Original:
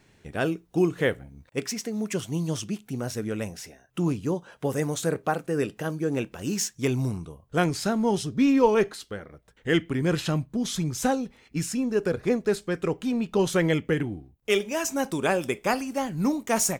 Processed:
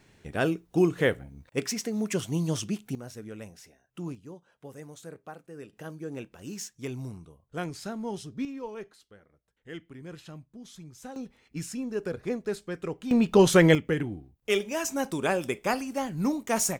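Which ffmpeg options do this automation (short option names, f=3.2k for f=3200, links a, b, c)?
-af "asetnsamples=n=441:p=0,asendcmd='2.95 volume volume -11dB;4.15 volume volume -17.5dB;5.73 volume volume -10.5dB;8.45 volume volume -18.5dB;11.16 volume volume -7dB;13.11 volume volume 5dB;13.75 volume volume -2.5dB',volume=0dB"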